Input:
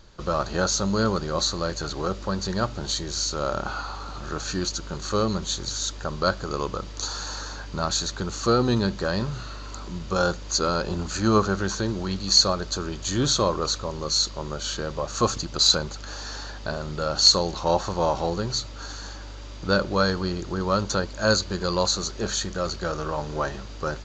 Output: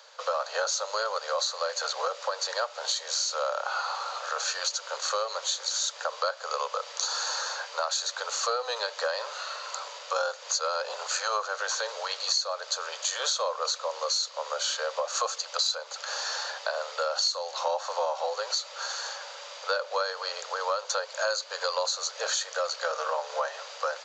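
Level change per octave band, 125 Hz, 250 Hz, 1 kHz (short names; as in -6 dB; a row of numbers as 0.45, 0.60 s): under -40 dB, under -40 dB, -2.0 dB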